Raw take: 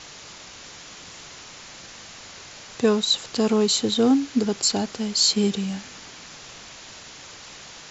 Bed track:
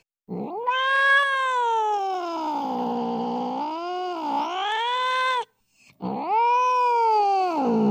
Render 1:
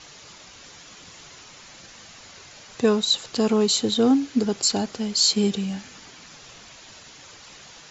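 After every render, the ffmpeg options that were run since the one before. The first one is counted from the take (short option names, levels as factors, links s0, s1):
-af "afftdn=nr=6:nf=-43"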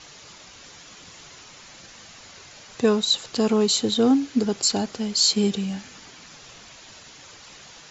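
-af anull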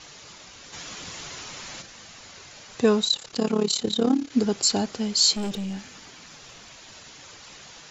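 -filter_complex "[0:a]asplit=3[s0][s1][s2];[s0]afade=t=out:st=0.72:d=0.02[s3];[s1]acontrast=78,afade=t=in:st=0.72:d=0.02,afade=t=out:st=1.81:d=0.02[s4];[s2]afade=t=in:st=1.81:d=0.02[s5];[s3][s4][s5]amix=inputs=3:normalize=0,asettb=1/sr,asplit=3[s6][s7][s8];[s6]atrim=end=3.084[s9];[s7]atrim=start=3.08:end=4.32,asetpts=PTS-STARTPTS,afade=t=in:d=0.004:c=qsin,afade=t=out:st=1.236:d=0.004:c=qsin,tremolo=f=35:d=0.824[s10];[s8]atrim=start=4.316[s11];[s9][s10]acrossfade=d=0.004:c1=hsin:c2=qsin[s12];[s12][s11]acrossfade=d=0.004:c1=qsin:c2=hsin,asettb=1/sr,asplit=3[s13][s14][s15];[s13]atrim=end=5.364[s16];[s14]atrim=start=5.36:end=6.95,asetpts=PTS-STARTPTS,afade=t=in:d=0.004:c=qsin,afade=t=out:st=1.586:d=0.004:c=qsin,aeval=exprs='(tanh(20*val(0)+0.25)-tanh(0.25))/20':c=same[s17];[s15]atrim=start=6.946[s18];[s16][s17]acrossfade=d=0.004:c1=hsin:c2=qsin[s19];[s19][s18]acrossfade=d=0.004:c1=qsin:c2=hsin"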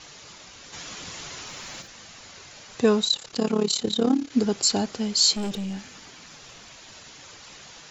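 -filter_complex "[0:a]asettb=1/sr,asplit=3[s0][s1][s2];[s0]atrim=end=1.464[s3];[s1]atrim=start=1.46:end=1.88,asetpts=PTS-STARTPTS,afade=t=in:d=0.004:c=qsin,afade=t=out:st=0.416:d=0.004:c=qsin,aeval=exprs='val(0)*gte(abs(val(0)),0.00158)':c=same[s4];[s2]atrim=start=1.876[s5];[s3][s4]acrossfade=d=0.004:c1=hsin:c2=qsin[s6];[s6][s5]acrossfade=d=0.004:c1=qsin:c2=hsin"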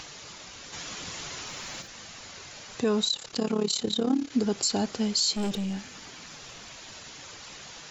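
-af "alimiter=limit=0.158:level=0:latency=1:release=101,acompressor=mode=upward:threshold=0.01:ratio=2.5"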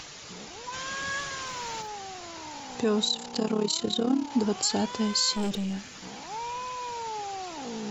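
-filter_complex "[1:a]volume=0.168[s0];[0:a][s0]amix=inputs=2:normalize=0"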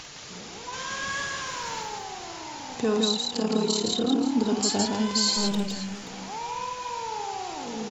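-af "aecho=1:1:50|163|527:0.447|0.668|0.2"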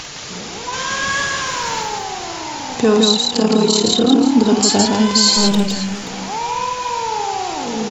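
-af "volume=3.76,alimiter=limit=0.794:level=0:latency=1"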